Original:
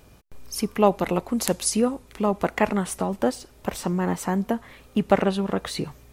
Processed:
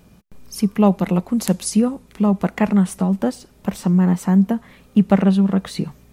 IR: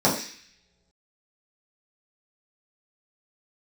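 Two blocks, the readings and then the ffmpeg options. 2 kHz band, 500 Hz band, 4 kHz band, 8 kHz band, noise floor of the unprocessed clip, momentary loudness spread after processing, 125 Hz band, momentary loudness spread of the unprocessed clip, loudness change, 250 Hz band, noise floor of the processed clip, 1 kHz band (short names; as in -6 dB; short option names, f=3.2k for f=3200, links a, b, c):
-1.0 dB, -0.5 dB, -1.0 dB, -1.0 dB, -52 dBFS, 10 LU, +10.5 dB, 9 LU, +6.0 dB, +9.5 dB, -51 dBFS, -1.0 dB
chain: -af "equalizer=f=190:t=o:w=0.63:g=13,volume=-1dB"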